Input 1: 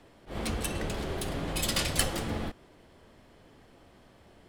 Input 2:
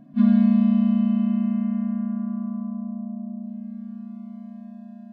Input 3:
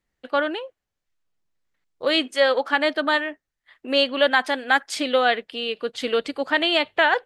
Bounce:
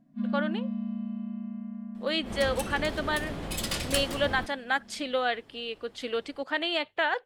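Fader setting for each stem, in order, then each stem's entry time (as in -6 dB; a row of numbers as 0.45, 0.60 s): -2.5, -14.0, -8.5 dB; 1.95, 0.00, 0.00 s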